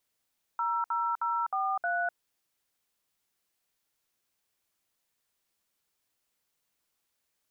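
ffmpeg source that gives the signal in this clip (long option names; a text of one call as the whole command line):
ffmpeg -f lavfi -i "aevalsrc='0.0335*clip(min(mod(t,0.312),0.251-mod(t,0.312))/0.002,0,1)*(eq(floor(t/0.312),0)*(sin(2*PI*941*mod(t,0.312))+sin(2*PI*1336*mod(t,0.312)))+eq(floor(t/0.312),1)*(sin(2*PI*941*mod(t,0.312))+sin(2*PI*1336*mod(t,0.312)))+eq(floor(t/0.312),2)*(sin(2*PI*941*mod(t,0.312))+sin(2*PI*1336*mod(t,0.312)))+eq(floor(t/0.312),3)*(sin(2*PI*770*mod(t,0.312))+sin(2*PI*1209*mod(t,0.312)))+eq(floor(t/0.312),4)*(sin(2*PI*697*mod(t,0.312))+sin(2*PI*1477*mod(t,0.312))))':duration=1.56:sample_rate=44100" out.wav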